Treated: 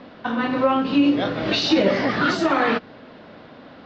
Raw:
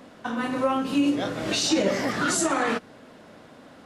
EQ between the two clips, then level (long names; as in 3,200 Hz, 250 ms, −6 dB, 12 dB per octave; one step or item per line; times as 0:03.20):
Butterworth low-pass 4,700 Hz 36 dB per octave
+5.0 dB